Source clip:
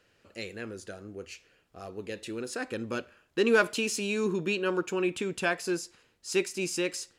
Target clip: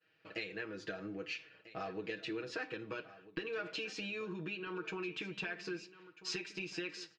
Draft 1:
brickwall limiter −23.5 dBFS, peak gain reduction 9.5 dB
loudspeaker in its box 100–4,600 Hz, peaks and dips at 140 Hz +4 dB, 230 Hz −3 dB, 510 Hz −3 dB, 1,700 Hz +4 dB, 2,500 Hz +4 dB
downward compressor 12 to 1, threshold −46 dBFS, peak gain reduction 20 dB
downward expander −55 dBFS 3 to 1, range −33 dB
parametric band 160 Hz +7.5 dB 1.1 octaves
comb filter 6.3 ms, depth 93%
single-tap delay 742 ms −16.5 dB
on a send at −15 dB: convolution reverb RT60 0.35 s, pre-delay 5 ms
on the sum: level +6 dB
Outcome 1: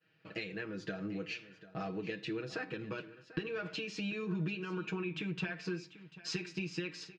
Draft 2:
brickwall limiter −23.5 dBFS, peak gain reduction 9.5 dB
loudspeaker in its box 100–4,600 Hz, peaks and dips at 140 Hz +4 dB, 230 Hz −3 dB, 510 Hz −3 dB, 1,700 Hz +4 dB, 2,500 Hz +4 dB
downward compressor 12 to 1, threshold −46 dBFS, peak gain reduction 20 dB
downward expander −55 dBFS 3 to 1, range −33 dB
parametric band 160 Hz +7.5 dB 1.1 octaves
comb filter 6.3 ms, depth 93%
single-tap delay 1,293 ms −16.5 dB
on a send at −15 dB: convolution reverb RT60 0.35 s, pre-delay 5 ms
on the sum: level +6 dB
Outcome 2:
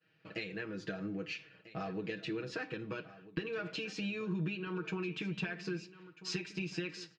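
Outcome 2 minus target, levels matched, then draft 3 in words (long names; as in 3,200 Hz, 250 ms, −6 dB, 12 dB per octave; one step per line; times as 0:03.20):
125 Hz band +8.0 dB
brickwall limiter −23.5 dBFS, peak gain reduction 9.5 dB
loudspeaker in its box 100–4,600 Hz, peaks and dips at 140 Hz +4 dB, 230 Hz −3 dB, 510 Hz −3 dB, 1,700 Hz +4 dB, 2,500 Hz +4 dB
downward compressor 12 to 1, threshold −46 dBFS, peak gain reduction 20 dB
downward expander −55 dBFS 3 to 1, range −33 dB
parametric band 160 Hz −4 dB 1.1 octaves
comb filter 6.3 ms, depth 93%
single-tap delay 1,293 ms −16.5 dB
on a send at −15 dB: convolution reverb RT60 0.35 s, pre-delay 5 ms
on the sum: level +6 dB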